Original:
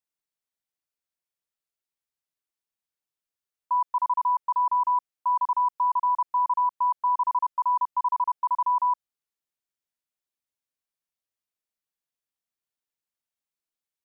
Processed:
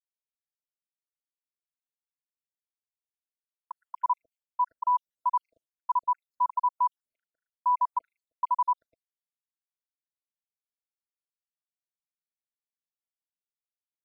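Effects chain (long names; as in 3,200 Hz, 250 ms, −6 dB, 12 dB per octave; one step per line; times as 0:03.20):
time-frequency cells dropped at random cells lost 74%
downward expander −58 dBFS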